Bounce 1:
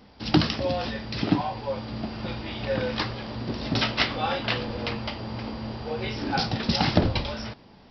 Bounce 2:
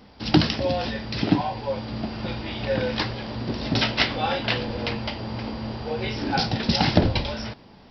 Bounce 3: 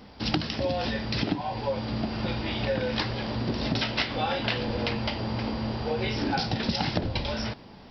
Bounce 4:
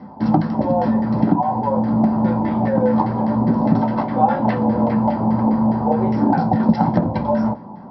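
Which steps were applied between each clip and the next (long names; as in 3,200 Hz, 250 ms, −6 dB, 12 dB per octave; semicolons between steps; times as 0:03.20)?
dynamic equaliser 1,200 Hz, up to −6 dB, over −50 dBFS, Q 6; level +2.5 dB
downward compressor 10 to 1, threshold −25 dBFS, peak gain reduction 14 dB; level +1.5 dB
auto-filter low-pass saw down 4.9 Hz 770–1,900 Hz; convolution reverb RT60 0.20 s, pre-delay 3 ms, DRR 4.5 dB; level −5 dB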